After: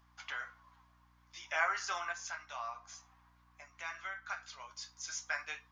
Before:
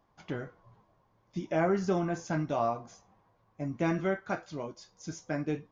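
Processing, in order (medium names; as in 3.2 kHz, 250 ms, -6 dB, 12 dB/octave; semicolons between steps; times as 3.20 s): 2.12–4.71 s: compression 2:1, threshold -42 dBFS, peak gain reduction 10 dB; high-pass 1.1 kHz 24 dB/octave; hum 60 Hz, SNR 26 dB; trim +6.5 dB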